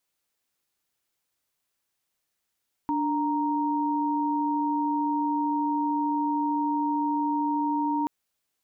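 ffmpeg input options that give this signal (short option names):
-f lavfi -i "aevalsrc='0.0501*(sin(2*PI*293.66*t)+sin(2*PI*932.33*t))':d=5.18:s=44100"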